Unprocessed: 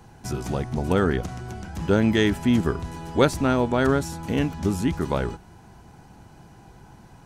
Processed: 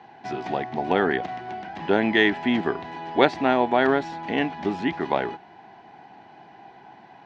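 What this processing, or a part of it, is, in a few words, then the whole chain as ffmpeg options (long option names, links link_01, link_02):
phone earpiece: -af "highpass=330,equalizer=frequency=510:width_type=q:width=4:gain=-6,equalizer=frequency=750:width_type=q:width=4:gain=8,equalizer=frequency=1300:width_type=q:width=4:gain=-7,equalizer=frequency=1900:width_type=q:width=4:gain=6,lowpass=frequency=3800:width=0.5412,lowpass=frequency=3800:width=1.3066,volume=3.5dB"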